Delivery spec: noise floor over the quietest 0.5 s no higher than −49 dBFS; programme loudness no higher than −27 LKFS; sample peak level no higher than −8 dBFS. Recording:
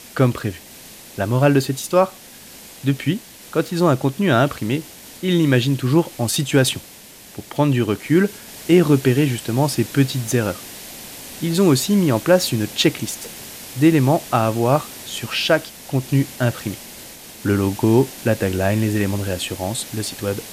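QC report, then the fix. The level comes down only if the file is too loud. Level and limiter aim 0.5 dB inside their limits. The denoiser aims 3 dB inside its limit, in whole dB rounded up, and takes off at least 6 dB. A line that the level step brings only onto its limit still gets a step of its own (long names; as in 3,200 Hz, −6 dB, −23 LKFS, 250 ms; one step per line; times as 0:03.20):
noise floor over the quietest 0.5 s −42 dBFS: out of spec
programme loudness −19.5 LKFS: out of spec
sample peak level −3.0 dBFS: out of spec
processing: level −8 dB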